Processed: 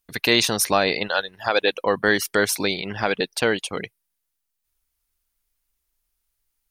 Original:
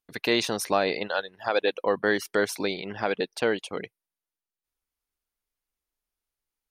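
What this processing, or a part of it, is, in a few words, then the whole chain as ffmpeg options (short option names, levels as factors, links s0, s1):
smiley-face EQ: -af "lowshelf=f=82:g=8,equalizer=f=430:t=o:w=2.6:g=-5,highshelf=f=7800:g=7,volume=2.37"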